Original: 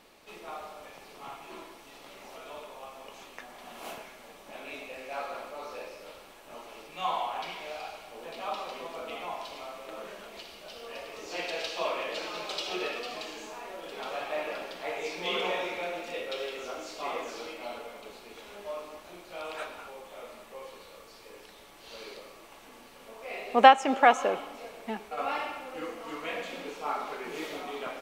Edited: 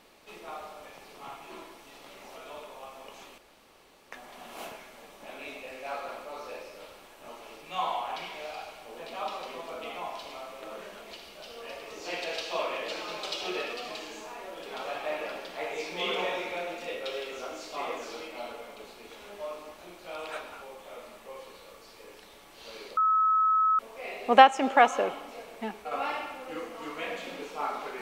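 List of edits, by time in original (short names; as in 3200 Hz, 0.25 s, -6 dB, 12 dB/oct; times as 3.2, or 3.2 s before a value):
3.38 insert room tone 0.74 s
22.23–23.05 bleep 1290 Hz -20.5 dBFS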